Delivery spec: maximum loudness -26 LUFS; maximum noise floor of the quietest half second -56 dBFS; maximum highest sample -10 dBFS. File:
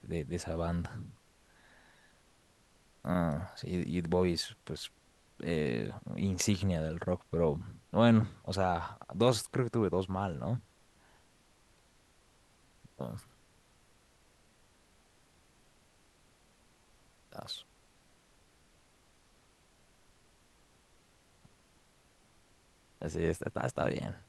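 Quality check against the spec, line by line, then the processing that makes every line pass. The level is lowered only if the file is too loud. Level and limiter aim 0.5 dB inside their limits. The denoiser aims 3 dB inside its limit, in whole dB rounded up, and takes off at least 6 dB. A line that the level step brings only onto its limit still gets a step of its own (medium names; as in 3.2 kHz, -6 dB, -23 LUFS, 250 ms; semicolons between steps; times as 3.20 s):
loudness -34.0 LUFS: pass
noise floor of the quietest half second -66 dBFS: pass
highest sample -13.0 dBFS: pass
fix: none needed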